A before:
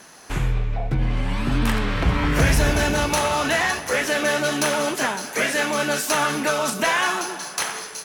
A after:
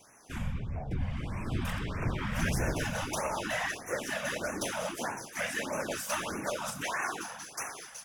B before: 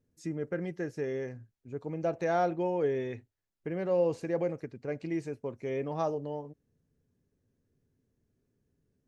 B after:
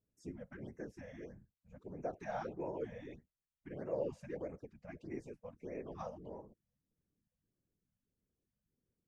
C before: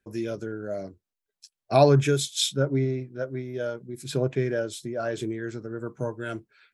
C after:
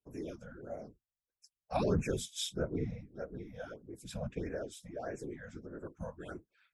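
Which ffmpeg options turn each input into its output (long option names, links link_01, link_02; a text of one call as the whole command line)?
ffmpeg -i in.wav -af "bandreject=frequency=4200:width=7.3,afftfilt=real='hypot(re,im)*cos(2*PI*random(0))':imag='hypot(re,im)*sin(2*PI*random(1))':win_size=512:overlap=0.75,afftfilt=real='re*(1-between(b*sr/1024,310*pow(4000/310,0.5+0.5*sin(2*PI*1.6*pts/sr))/1.41,310*pow(4000/310,0.5+0.5*sin(2*PI*1.6*pts/sr))*1.41))':imag='im*(1-between(b*sr/1024,310*pow(4000/310,0.5+0.5*sin(2*PI*1.6*pts/sr))/1.41,310*pow(4000/310,0.5+0.5*sin(2*PI*1.6*pts/sr))*1.41))':win_size=1024:overlap=0.75,volume=-5.5dB" out.wav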